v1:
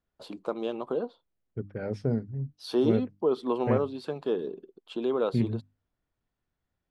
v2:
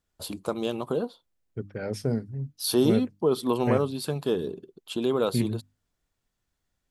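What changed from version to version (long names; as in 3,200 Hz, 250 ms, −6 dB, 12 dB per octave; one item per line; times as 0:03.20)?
first voice: remove high-pass filter 280 Hz 12 dB per octave
master: remove head-to-tape spacing loss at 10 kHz 24 dB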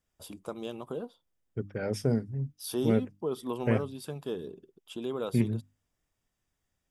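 first voice −9.0 dB
master: add Butterworth band-reject 4,200 Hz, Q 7.3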